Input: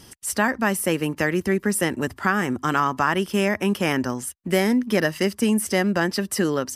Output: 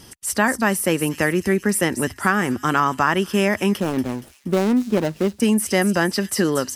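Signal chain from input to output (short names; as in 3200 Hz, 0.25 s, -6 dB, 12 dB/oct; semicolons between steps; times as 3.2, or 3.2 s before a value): 3.8–5.4 median filter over 41 samples; thin delay 0.235 s, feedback 46%, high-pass 4600 Hz, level -6.5 dB; gain +2.5 dB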